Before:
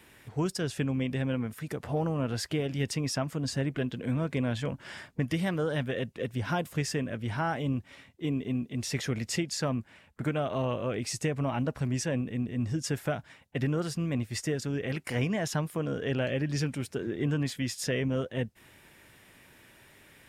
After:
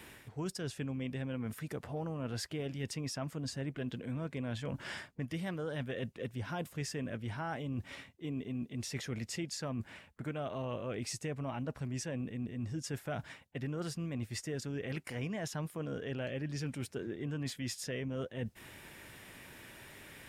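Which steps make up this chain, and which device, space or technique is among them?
compression on the reversed sound (reverse; compressor 4:1, threshold -42 dBFS, peak gain reduction 15 dB; reverse); gain +4 dB

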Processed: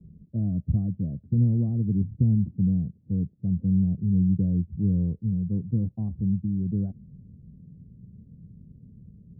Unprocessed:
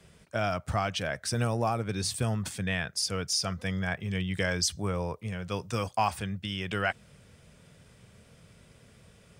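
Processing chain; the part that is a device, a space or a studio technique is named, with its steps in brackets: the neighbour's flat through the wall (LPF 270 Hz 24 dB/oct; bell 180 Hz +4 dB 0.71 oct); gain +8 dB

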